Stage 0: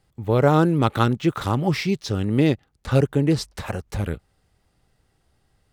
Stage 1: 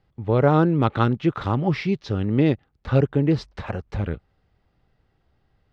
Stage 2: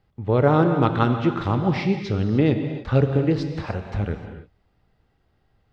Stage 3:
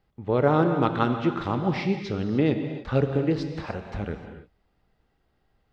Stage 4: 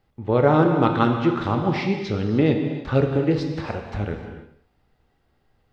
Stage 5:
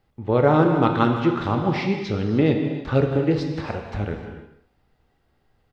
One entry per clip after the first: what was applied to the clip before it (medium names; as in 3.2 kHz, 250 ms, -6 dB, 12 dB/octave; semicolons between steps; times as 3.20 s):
distance through air 210 m
gated-style reverb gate 330 ms flat, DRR 6 dB
peaking EQ 100 Hz -7 dB 0.9 oct; trim -2.5 dB
gated-style reverb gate 260 ms falling, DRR 7 dB; trim +3 dB
speakerphone echo 160 ms, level -16 dB